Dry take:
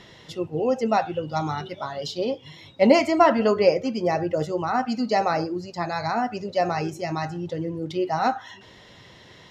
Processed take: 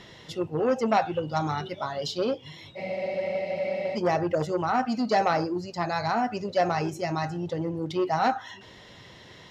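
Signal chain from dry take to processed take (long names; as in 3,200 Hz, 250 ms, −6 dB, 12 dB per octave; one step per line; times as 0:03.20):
frozen spectrum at 0:02.79, 1.16 s
saturating transformer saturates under 1,000 Hz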